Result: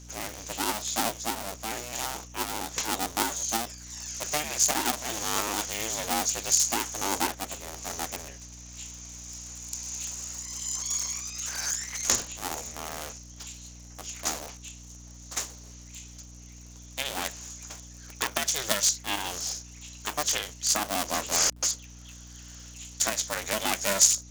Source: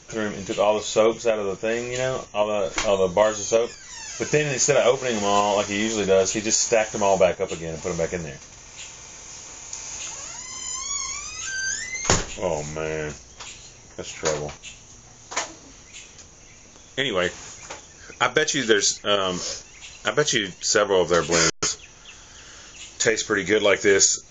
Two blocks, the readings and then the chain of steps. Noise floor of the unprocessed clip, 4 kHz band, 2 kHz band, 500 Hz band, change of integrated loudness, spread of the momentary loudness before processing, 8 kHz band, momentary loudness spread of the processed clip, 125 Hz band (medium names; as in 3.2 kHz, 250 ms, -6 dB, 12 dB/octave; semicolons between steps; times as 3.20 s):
-48 dBFS, -4.0 dB, -9.0 dB, -17.0 dB, -6.0 dB, 19 LU, -1.0 dB, 20 LU, -10.0 dB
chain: cycle switcher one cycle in 2, inverted; tone controls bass -8 dB, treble +11 dB; hum 60 Hz, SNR 16 dB; trim -11 dB